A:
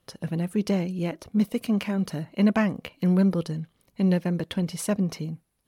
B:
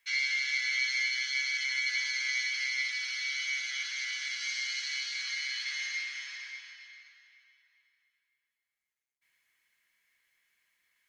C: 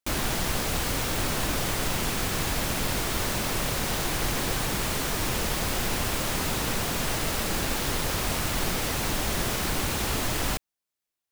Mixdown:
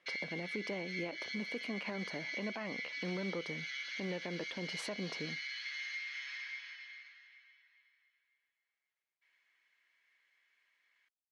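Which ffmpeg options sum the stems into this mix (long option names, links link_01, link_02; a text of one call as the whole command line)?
ffmpeg -i stem1.wav -i stem2.wav -filter_complex "[0:a]volume=-1dB[link_01];[1:a]acompressor=threshold=-40dB:ratio=4,volume=1dB[link_02];[link_01]acrusher=bits=8:mode=log:mix=0:aa=0.000001,alimiter=limit=-20dB:level=0:latency=1,volume=0dB[link_03];[link_02][link_03]amix=inputs=2:normalize=0,highpass=360,lowpass=3800,alimiter=level_in=5.5dB:limit=-24dB:level=0:latency=1:release=136,volume=-5.5dB" out.wav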